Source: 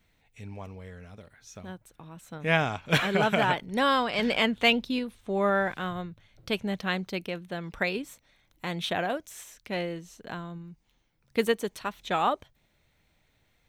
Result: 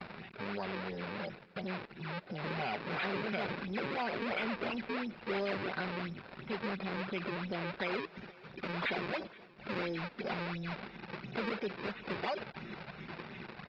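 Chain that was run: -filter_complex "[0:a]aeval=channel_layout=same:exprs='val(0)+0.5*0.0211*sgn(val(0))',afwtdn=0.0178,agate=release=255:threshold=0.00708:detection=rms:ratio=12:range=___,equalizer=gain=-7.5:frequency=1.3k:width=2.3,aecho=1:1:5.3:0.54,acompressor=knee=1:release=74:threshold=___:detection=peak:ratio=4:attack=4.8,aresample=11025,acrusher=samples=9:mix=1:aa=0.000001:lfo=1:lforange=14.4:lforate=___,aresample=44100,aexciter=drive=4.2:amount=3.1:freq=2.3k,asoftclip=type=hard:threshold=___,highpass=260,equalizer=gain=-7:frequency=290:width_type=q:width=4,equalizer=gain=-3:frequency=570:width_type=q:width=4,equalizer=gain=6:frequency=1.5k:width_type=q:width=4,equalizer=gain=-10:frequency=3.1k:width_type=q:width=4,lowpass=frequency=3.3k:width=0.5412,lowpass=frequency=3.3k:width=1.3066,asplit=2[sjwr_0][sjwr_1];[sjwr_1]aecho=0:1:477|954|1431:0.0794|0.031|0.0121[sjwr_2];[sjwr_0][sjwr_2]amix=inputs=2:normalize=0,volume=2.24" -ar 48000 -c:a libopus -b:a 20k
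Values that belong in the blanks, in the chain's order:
0.00794, 0.0112, 2.9, 0.0224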